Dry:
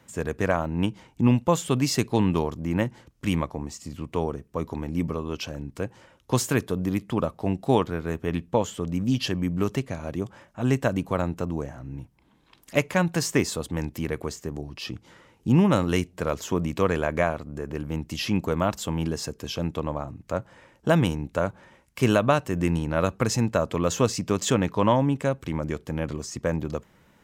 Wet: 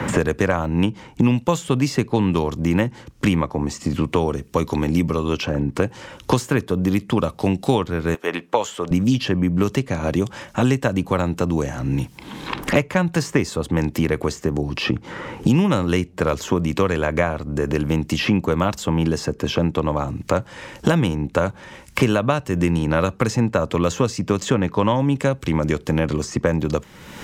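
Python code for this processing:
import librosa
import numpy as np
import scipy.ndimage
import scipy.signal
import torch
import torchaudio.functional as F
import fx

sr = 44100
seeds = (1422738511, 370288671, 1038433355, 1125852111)

y = fx.highpass(x, sr, hz=560.0, slope=12, at=(8.14, 8.91))
y = fx.high_shelf(y, sr, hz=9900.0, db=-7.0)
y = fx.notch(y, sr, hz=660.0, q=12.0)
y = fx.band_squash(y, sr, depth_pct=100)
y = y * librosa.db_to_amplitude(5.0)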